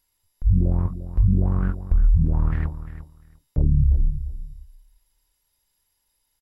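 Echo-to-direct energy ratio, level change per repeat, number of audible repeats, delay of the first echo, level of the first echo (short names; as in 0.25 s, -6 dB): -13.0 dB, -16.0 dB, 2, 0.349 s, -13.0 dB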